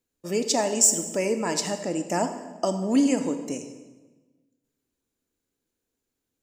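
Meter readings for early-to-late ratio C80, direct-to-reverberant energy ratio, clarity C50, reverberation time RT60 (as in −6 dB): 11.0 dB, 8.0 dB, 9.5 dB, 1.3 s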